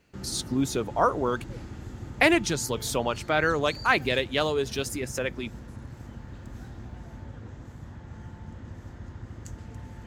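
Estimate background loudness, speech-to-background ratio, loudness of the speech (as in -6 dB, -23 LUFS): -41.5 LUFS, 15.0 dB, -26.5 LUFS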